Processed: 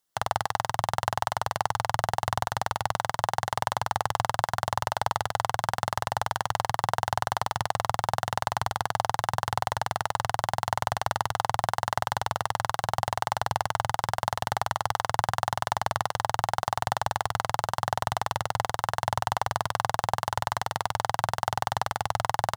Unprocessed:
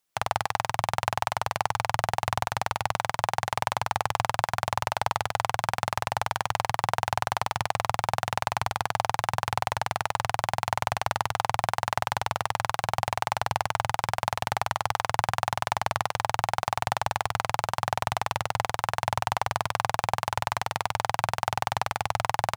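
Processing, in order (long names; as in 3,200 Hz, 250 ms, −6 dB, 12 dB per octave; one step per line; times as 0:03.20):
parametric band 2,400 Hz −13.5 dB 0.22 octaves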